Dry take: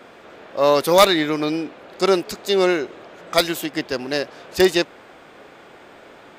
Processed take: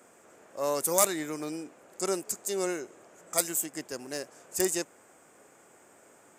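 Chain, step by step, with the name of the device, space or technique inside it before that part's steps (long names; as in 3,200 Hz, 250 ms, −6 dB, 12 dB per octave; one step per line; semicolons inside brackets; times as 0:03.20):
budget condenser microphone (high-pass filter 80 Hz; high shelf with overshoot 5,500 Hz +13 dB, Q 3)
level −13.5 dB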